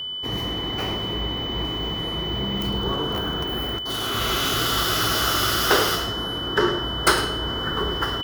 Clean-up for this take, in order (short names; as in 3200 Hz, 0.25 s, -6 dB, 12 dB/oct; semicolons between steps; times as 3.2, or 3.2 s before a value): notch 3000 Hz, Q 30; inverse comb 0.106 s -12.5 dB